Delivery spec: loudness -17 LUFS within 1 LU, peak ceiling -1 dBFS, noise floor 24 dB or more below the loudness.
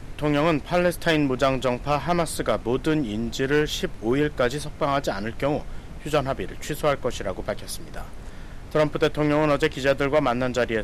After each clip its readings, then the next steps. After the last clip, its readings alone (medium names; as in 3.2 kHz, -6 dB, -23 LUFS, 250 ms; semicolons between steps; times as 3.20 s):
clipped samples 0.6%; clipping level -12.5 dBFS; noise floor -38 dBFS; noise floor target -48 dBFS; loudness -24.0 LUFS; peak level -12.5 dBFS; loudness target -17.0 LUFS
-> clip repair -12.5 dBFS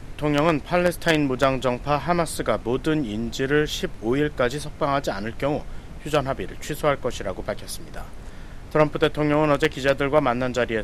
clipped samples 0.0%; noise floor -38 dBFS; noise floor target -48 dBFS
-> noise print and reduce 10 dB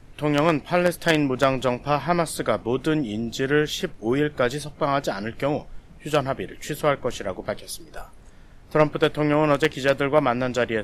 noise floor -47 dBFS; noise floor target -48 dBFS
-> noise print and reduce 6 dB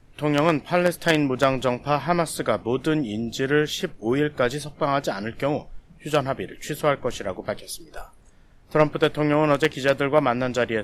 noise floor -51 dBFS; loudness -23.5 LUFS; peak level -3.5 dBFS; loudness target -17.0 LUFS
-> trim +6.5 dB; peak limiter -1 dBFS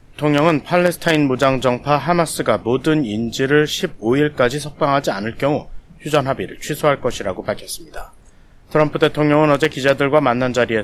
loudness -17.5 LUFS; peak level -1.0 dBFS; noise floor -45 dBFS